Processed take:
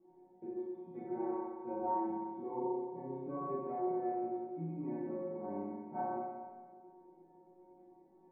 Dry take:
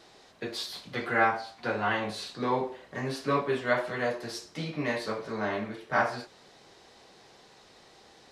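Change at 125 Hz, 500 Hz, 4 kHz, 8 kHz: -10.5 dB, -7.5 dB, under -40 dB, under -30 dB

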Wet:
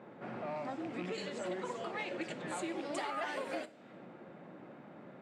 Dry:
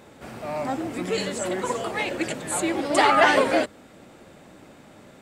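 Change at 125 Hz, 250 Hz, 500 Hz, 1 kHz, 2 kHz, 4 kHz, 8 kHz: -12.0 dB, -13.5 dB, -15.5 dB, -17.5 dB, -17.5 dB, -17.0 dB, -19.5 dB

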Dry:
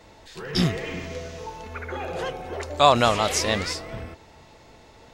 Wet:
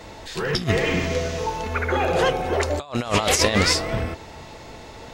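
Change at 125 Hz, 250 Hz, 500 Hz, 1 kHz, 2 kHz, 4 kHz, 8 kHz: +4.0 dB, +3.0 dB, +3.0 dB, -1.0 dB, +6.0 dB, +2.5 dB, +5.0 dB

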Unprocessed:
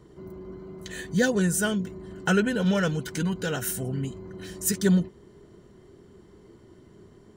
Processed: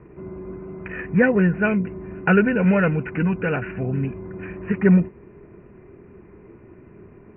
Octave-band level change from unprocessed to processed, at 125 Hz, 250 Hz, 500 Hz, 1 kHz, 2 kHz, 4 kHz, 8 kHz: +6.0 dB, +6.0 dB, +6.0 dB, +6.0 dB, +6.5 dB, under -10 dB, under -40 dB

